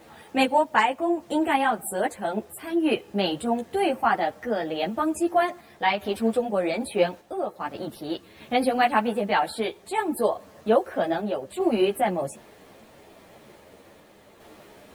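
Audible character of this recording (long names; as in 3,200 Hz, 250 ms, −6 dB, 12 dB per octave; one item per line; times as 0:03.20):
a quantiser's noise floor 10 bits, dither none
sample-and-hold tremolo 2.5 Hz
a shimmering, thickened sound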